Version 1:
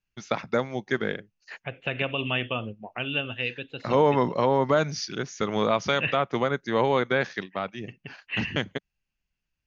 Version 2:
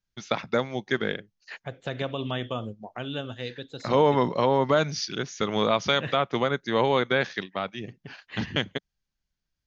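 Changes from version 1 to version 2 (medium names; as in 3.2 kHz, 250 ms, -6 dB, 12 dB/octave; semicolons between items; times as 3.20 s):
second voice: remove resonant low-pass 2.7 kHz, resonance Q 9.1; master: add peaking EQ 3.5 kHz +5 dB 0.71 oct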